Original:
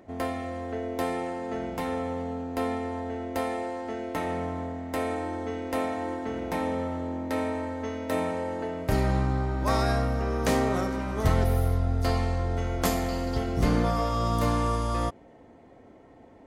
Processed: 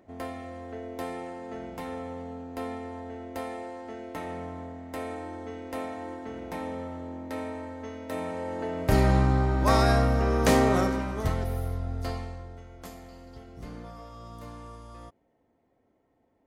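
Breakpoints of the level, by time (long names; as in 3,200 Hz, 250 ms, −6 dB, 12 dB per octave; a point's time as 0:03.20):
0:08.15 −6 dB
0:08.97 +3.5 dB
0:10.86 +3.5 dB
0:11.38 −6.5 dB
0:12.06 −6.5 dB
0:12.66 −18 dB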